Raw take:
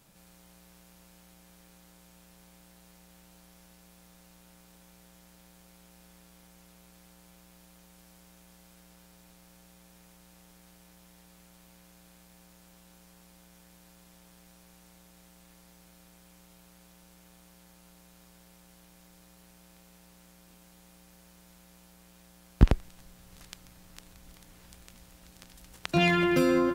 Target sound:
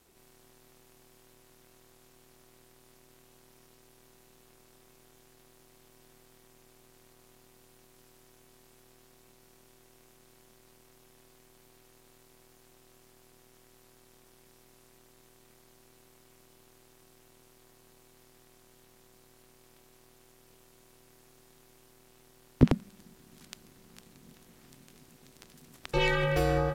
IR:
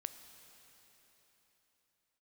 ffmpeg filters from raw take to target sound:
-af "aeval=exprs='val(0)*sin(2*PI*200*n/s)':c=same"

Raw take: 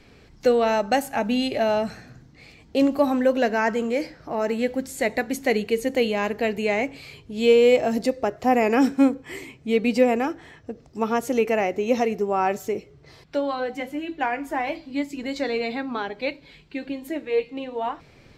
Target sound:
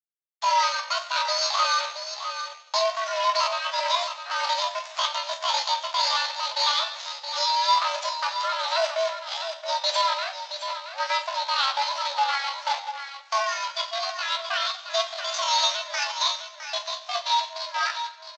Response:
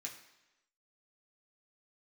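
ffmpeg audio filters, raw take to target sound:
-filter_complex "[0:a]agate=range=0.0631:threshold=0.00562:ratio=16:detection=peak,alimiter=limit=0.15:level=0:latency=1:release=161,aexciter=amount=4:drive=8.5:freq=2500,aresample=11025,acrusher=bits=5:dc=4:mix=0:aa=0.000001,aresample=44100,tremolo=f=1.8:d=0.47,highpass=f=250:t=q:w=0.5412,highpass=f=250:t=q:w=1.307,lowpass=f=3500:t=q:w=0.5176,lowpass=f=3500:t=q:w=0.7071,lowpass=f=3500:t=q:w=1.932,afreqshift=160,aecho=1:1:668:0.355,asplit=2[s0][s1];[1:a]atrim=start_sample=2205,adelay=18[s2];[s1][s2]afir=irnorm=-1:irlink=0,volume=1.12[s3];[s0][s3]amix=inputs=2:normalize=0,asetrate=66075,aresample=44100,atempo=0.66742"

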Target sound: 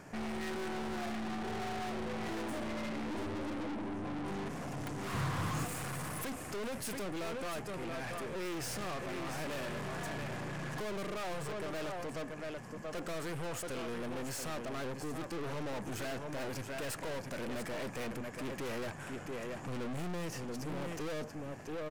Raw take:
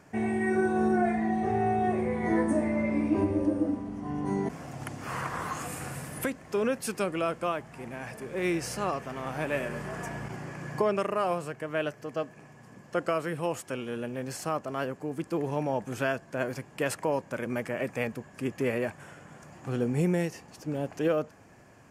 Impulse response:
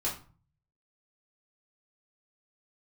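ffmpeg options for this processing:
-filter_complex "[0:a]aecho=1:1:681:0.282,aeval=exprs='(tanh(141*val(0)+0.4)-tanh(0.4))/141':c=same,asettb=1/sr,asplit=3[s0][s1][s2];[s0]atrim=end=5.134[s3];[s1]atrim=start=5.13:end=5.65,asetpts=PTS-STARTPTS,afade=t=in:d=0.004:c=qsin,afade=t=out:st=0.516:d=0.004:c=qsin,equalizer=f=110:w=0.58:g=13[s4];[s2]atrim=start=5.646[s5];[s3][s4]acrossfade=d=0.004:c1=hsin:c2=qsin[s6];[s6][s5]acrossfade=d=0.004:c1=qsin:c2=hsin,volume=1.78"

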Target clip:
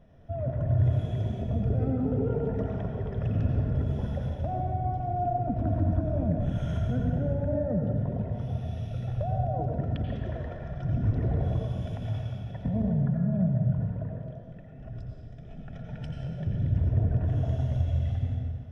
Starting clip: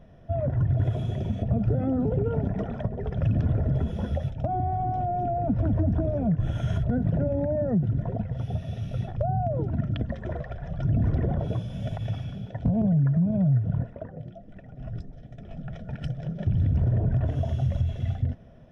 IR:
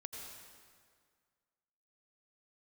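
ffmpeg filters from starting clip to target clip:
-filter_complex "[1:a]atrim=start_sample=2205[s0];[0:a][s0]afir=irnorm=-1:irlink=0"

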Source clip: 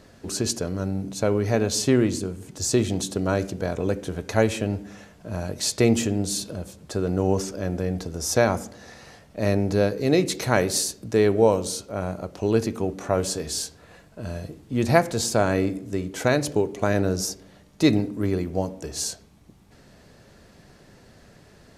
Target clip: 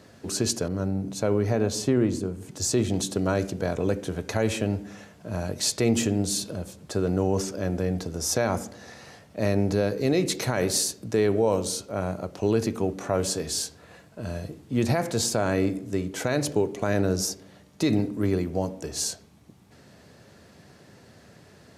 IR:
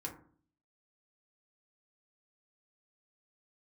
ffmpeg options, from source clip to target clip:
-filter_complex "[0:a]highpass=f=73:w=0.5412,highpass=f=73:w=1.3066,alimiter=limit=0.224:level=0:latency=1:release=43,asettb=1/sr,asplit=3[s0][s1][s2];[s0]atrim=end=0.684[s3];[s1]atrim=start=0.68:end=2.94,asetpts=PTS-STARTPTS,afade=t=in:d=0.004:c=qsin,afade=t=out:st=2.256:d=0.004:c=qsin,adynamicequalizer=threshold=0.00631:dfrequency=1600:dqfactor=0.7:tfrequency=1600:tqfactor=0.7:attack=5:release=100:ratio=0.375:range=4:mode=cutabove:tftype=highshelf[s4];[s2]atrim=start=2.936[s5];[s3][s4]acrossfade=d=0.004:c1=hsin:c2=qsin[s6];[s6][s5]acrossfade=d=0.004:c1=qsin:c2=hsin"

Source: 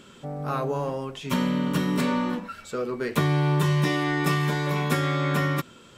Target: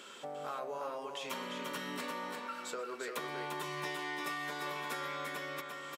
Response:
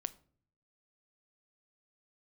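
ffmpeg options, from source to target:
-filter_complex "[0:a]highpass=520,acompressor=threshold=0.00794:ratio=4,asplit=2[s0][s1];[s1]aecho=0:1:125|347:0.106|0.562[s2];[s0][s2]amix=inputs=2:normalize=0,volume=1.19"

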